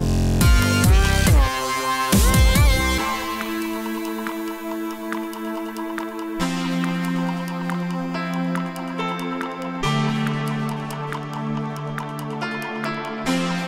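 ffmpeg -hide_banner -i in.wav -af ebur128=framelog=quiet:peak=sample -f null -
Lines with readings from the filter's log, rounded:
Integrated loudness:
  I:         -22.3 LUFS
  Threshold: -32.3 LUFS
Loudness range:
  LRA:         8.5 LU
  Threshold: -43.2 LUFS
  LRA low:   -26.7 LUFS
  LRA high:  -18.2 LUFS
Sample peak:
  Peak:       -7.6 dBFS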